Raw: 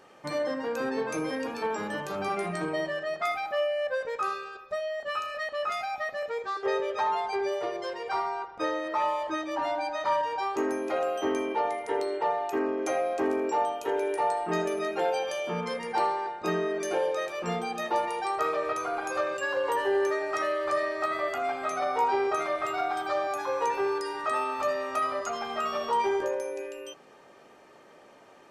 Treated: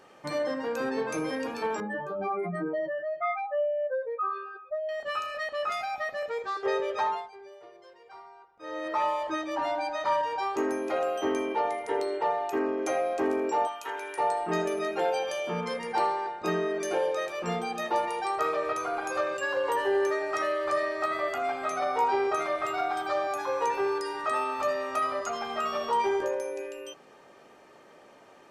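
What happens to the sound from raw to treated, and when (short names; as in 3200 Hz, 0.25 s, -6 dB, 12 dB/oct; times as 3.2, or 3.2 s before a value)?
1.8–4.89 spectral contrast raised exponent 2.1
7.05–8.87 dip -18.5 dB, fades 0.25 s
13.67–14.18 resonant low shelf 760 Hz -11.5 dB, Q 1.5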